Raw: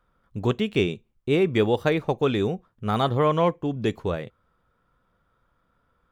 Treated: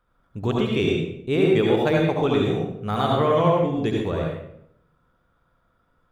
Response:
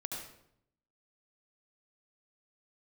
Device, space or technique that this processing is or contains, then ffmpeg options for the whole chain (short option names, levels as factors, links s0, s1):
bathroom: -filter_complex "[1:a]atrim=start_sample=2205[s0];[0:a][s0]afir=irnorm=-1:irlink=0,volume=1.19"